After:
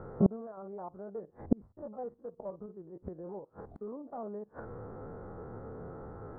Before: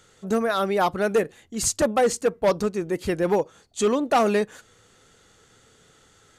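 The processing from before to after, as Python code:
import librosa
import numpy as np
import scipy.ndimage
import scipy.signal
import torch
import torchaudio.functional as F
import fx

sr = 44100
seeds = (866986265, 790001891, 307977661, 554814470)

y = fx.spec_steps(x, sr, hold_ms=50)
y = fx.gate_flip(y, sr, shuts_db=-27.0, range_db=-36)
y = scipy.signal.sosfilt(scipy.signal.cheby2(4, 50, 2700.0, 'lowpass', fs=sr, output='sos'), y)
y = y * librosa.db_to_amplitude(17.0)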